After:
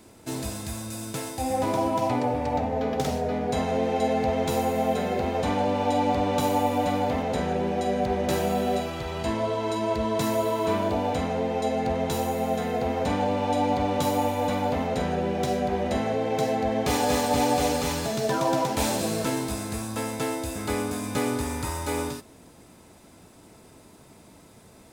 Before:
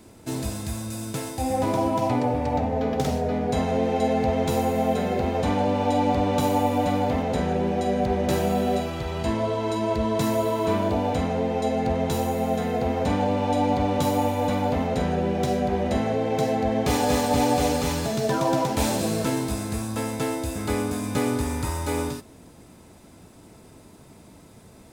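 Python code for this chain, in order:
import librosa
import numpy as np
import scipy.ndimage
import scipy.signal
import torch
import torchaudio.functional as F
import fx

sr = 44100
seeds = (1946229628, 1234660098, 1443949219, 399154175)

y = fx.low_shelf(x, sr, hz=310.0, db=-5.0)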